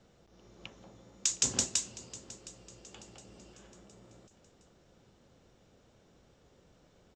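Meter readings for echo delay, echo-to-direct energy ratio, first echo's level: 714 ms, −17.5 dB, −18.5 dB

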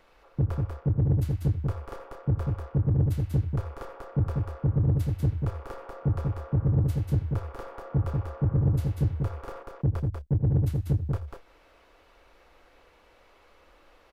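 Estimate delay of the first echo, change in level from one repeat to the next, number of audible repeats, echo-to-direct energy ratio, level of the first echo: 81 ms, repeats not evenly spaced, 2, −3.5 dB, −16.0 dB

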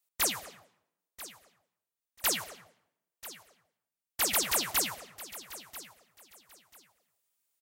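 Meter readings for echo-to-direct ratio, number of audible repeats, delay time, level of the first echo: −16.0 dB, 2, 989 ms, −16.0 dB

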